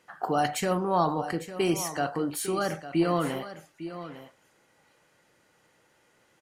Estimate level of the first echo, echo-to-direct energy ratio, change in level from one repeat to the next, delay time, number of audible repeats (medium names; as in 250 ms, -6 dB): -13.0 dB, -13.0 dB, no regular repeats, 853 ms, 1